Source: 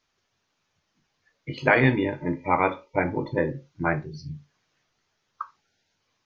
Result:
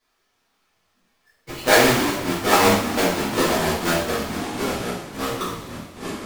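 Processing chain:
each half-wave held at its own peak
parametric band 130 Hz −8.5 dB 1.9 octaves
delay with pitch and tempo change per echo 333 ms, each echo −4 semitones, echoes 3, each echo −6 dB
coupled-rooms reverb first 0.61 s, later 2.7 s, DRR −9.5 dB
level −8 dB

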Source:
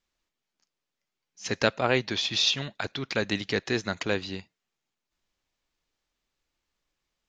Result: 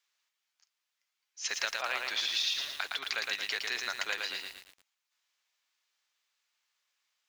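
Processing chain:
high-pass filter 1,200 Hz 12 dB per octave
downward compressor 5 to 1, threshold −35 dBFS, peak gain reduction 13.5 dB
feedback echo at a low word length 113 ms, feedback 55%, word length 9 bits, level −3 dB
level +4 dB

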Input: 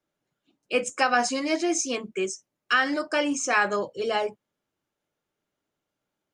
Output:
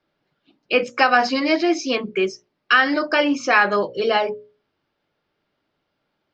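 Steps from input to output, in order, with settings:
elliptic low-pass filter 4,900 Hz, stop band 80 dB
mains-hum notches 60/120/180/240/300/360/420/480/540/600 Hz
in parallel at −0.5 dB: downward compressor, threshold −31 dBFS, peak gain reduction 13 dB
on the sum: level +5 dB

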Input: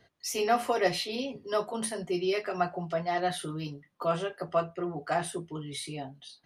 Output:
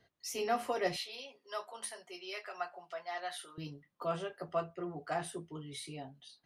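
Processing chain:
0:00.96–0:03.58: high-pass filter 800 Hz 12 dB per octave
level −7 dB

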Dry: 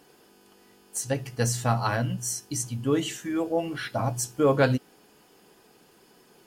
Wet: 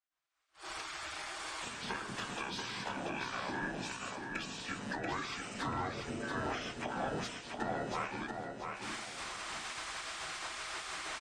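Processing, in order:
camcorder AGC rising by 68 dB per second
noise gate −33 dBFS, range −32 dB
gate on every frequency bin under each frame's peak −20 dB weak
high-pass filter 47 Hz
parametric band 890 Hz −7 dB 1.5 octaves
downward compressor 5 to 1, threshold −40 dBFS, peak gain reduction 11 dB
mid-hump overdrive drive 12 dB, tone 1,400 Hz, clips at −24 dBFS
repeating echo 395 ms, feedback 33%, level −4.5 dB
wrong playback speed 78 rpm record played at 45 rpm
level +4.5 dB

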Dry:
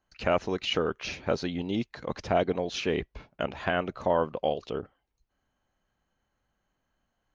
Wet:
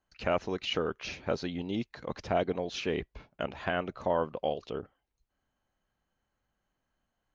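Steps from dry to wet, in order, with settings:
low-pass filter 8,800 Hz
level −3.5 dB

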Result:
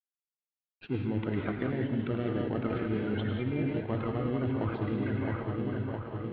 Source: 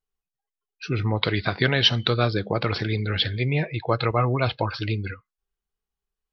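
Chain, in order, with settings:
spectral magnitudes quantised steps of 30 dB
treble cut that deepens with the level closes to 700 Hz, closed at −18 dBFS
echo with a time of its own for lows and highs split 1,600 Hz, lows 664 ms, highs 104 ms, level −8 dB
dynamic equaliser 260 Hz, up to +5 dB, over −36 dBFS, Q 1.5
in parallel at −9.5 dB: sample-rate reduction 1,200 Hz, jitter 0%
on the sum: parametric band 950 Hz −5 dB 0.89 octaves
convolution reverb, pre-delay 3 ms, DRR 2 dB
reversed playback
downward compressor 6 to 1, threshold −28 dBFS, peak gain reduction 13.5 dB
reversed playback
dead-zone distortion −55 dBFS
Butterworth low-pass 3,300 Hz 36 dB per octave

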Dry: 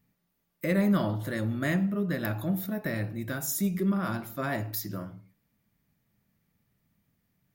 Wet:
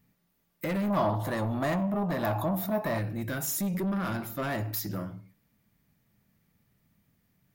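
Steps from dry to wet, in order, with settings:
in parallel at +2 dB: brickwall limiter −23 dBFS, peak gain reduction 8 dB
on the sum: soft clipping −22.5 dBFS, distortion −11 dB
0:00.90–0:02.99: flat-topped bell 850 Hz +10.5 dB 1.1 octaves
level −3.5 dB

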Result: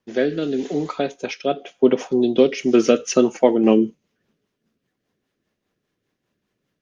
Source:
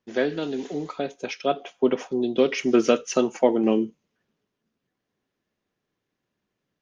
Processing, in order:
0:01.89–0:02.80: dynamic equaliser 1,500 Hz, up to −5 dB, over −37 dBFS, Q 0.94
rotating-speaker cabinet horn 0.8 Hz, later 5 Hz, at 0:02.29
level +7 dB

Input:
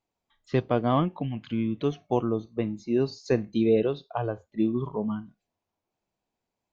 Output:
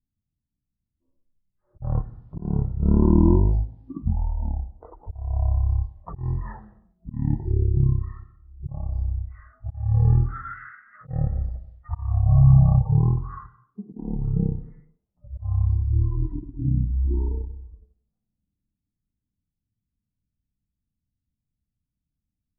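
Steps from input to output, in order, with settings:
low-pass that shuts in the quiet parts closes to 480 Hz, open at −24.5 dBFS
volume swells 108 ms
change of speed 0.298×
level +6.5 dB

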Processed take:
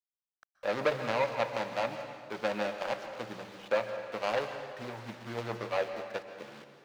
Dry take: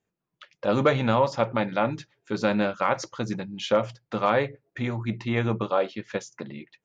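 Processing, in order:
running median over 41 samples
bit reduction 8 bits
three-way crossover with the lows and the highs turned down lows −18 dB, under 520 Hz, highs −14 dB, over 5,700 Hz
on a send: convolution reverb RT60 1.8 s, pre-delay 118 ms, DRR 7.5 dB

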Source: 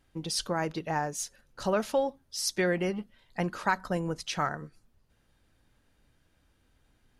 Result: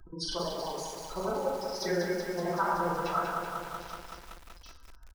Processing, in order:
octave-band graphic EQ 125/250/1,000/2,000/8,000 Hz −11/−6/+9/−5/−11 dB
delay with a high-pass on its return 1,083 ms, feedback 58%, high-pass 4,500 Hz, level −19 dB
granular cloud 100 ms, pitch spread up and down by 0 semitones
gate on every frequency bin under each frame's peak −15 dB strong
tempo change 1.4×
convolution reverb RT60 0.65 s, pre-delay 3 ms, DRR −2.5 dB
upward compression, threshold −38 dBFS
parametric band 830 Hz −11.5 dB 0.96 octaves
feedback echo at a low word length 189 ms, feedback 80%, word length 8 bits, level −5 dB

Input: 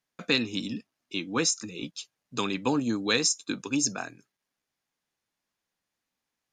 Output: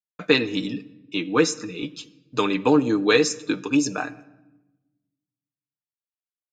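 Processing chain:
downward expander −47 dBFS
bass and treble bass −4 dB, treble −11 dB
comb filter 6.6 ms, depth 50%
dynamic equaliser 420 Hz, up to +5 dB, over −41 dBFS, Q 2.4
on a send: convolution reverb RT60 1.0 s, pre-delay 5 ms, DRR 16.5 dB
on the sum: level +6 dB

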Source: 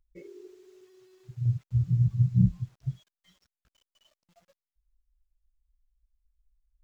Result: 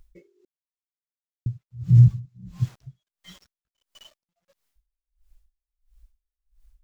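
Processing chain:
0:00.45–0:01.46: silence
0:02.25–0:02.74: low-shelf EQ 200 Hz −9.5 dB
boost into a limiter +22.5 dB
tremolo with a sine in dB 1.5 Hz, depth 37 dB
level −4.5 dB

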